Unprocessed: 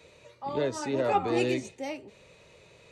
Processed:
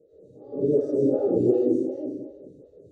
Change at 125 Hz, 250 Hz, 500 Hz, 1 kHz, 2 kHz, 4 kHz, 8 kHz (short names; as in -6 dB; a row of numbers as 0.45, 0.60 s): +4.5 dB, +8.5 dB, +7.0 dB, -14.5 dB, under -25 dB, under -25 dB, under -15 dB